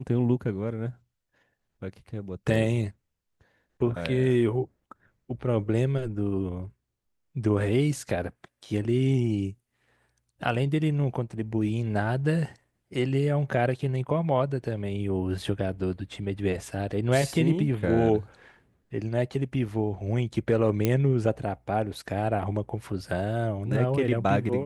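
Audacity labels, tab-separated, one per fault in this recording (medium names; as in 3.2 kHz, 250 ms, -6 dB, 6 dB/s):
20.850000	20.850000	pop -10 dBFS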